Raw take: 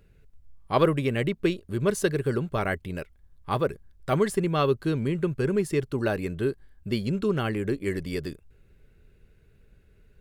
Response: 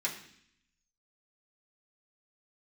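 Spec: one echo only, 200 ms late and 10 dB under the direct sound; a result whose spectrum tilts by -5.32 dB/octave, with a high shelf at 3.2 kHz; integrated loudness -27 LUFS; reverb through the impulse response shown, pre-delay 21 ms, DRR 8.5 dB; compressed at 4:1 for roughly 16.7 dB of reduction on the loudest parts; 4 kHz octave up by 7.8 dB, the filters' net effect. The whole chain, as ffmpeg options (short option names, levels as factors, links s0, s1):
-filter_complex "[0:a]highshelf=f=3200:g=3.5,equalizer=f=4000:t=o:g=7.5,acompressor=threshold=0.0141:ratio=4,aecho=1:1:200:0.316,asplit=2[s0][s1];[1:a]atrim=start_sample=2205,adelay=21[s2];[s1][s2]afir=irnorm=-1:irlink=0,volume=0.224[s3];[s0][s3]amix=inputs=2:normalize=0,volume=3.76"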